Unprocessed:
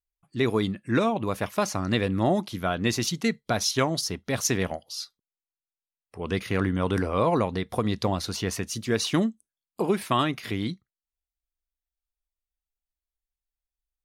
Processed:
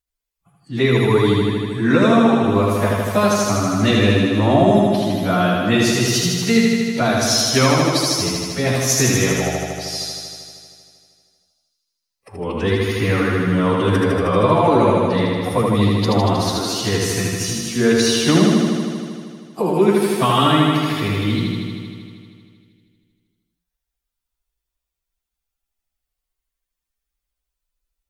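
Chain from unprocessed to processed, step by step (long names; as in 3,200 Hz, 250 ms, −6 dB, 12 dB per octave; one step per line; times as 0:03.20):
flutter between parallel walls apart 6.7 metres, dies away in 1.1 s
time stretch by phase vocoder 2×
level +6.5 dB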